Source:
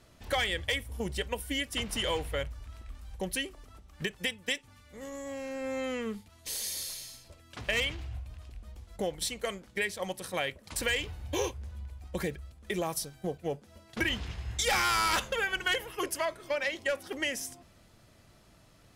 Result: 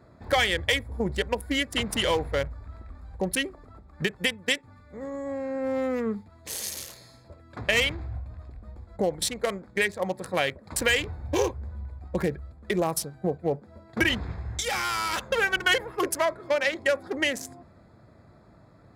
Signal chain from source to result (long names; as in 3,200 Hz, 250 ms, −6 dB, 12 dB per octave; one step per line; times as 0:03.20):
adaptive Wiener filter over 15 samples
high-pass filter 67 Hz
0:14.34–0:15.31: downward compressor 2.5 to 1, threshold −38 dBFS, peak gain reduction 8.5 dB
level +7.5 dB